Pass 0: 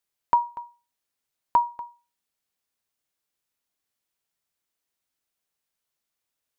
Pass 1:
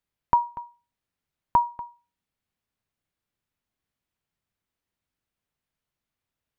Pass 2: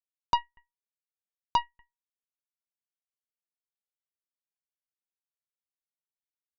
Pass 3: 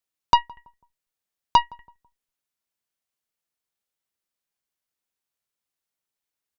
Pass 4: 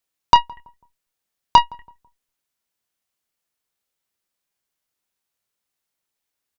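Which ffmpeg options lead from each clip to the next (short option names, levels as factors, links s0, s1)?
-af "bass=f=250:g=11,treble=f=4000:g=-9"
-af "aeval=exprs='0.422*(cos(1*acos(clip(val(0)/0.422,-1,1)))-cos(1*PI/2))+0.0596*(cos(7*acos(clip(val(0)/0.422,-1,1)))-cos(7*PI/2))+0.0211*(cos(8*acos(clip(val(0)/0.422,-1,1)))-cos(8*PI/2))':c=same,volume=0.531"
-filter_complex "[0:a]asplit=2[s0][s1];[s1]adelay=165,lowpass=f=890:p=1,volume=0.0708,asplit=2[s2][s3];[s3]adelay=165,lowpass=f=890:p=1,volume=0.39,asplit=2[s4][s5];[s5]adelay=165,lowpass=f=890:p=1,volume=0.39[s6];[s0][s2][s4][s6]amix=inputs=4:normalize=0,volume=2.66"
-filter_complex "[0:a]asplit=2[s0][s1];[s1]adelay=27,volume=0.299[s2];[s0][s2]amix=inputs=2:normalize=0,volume=1.78"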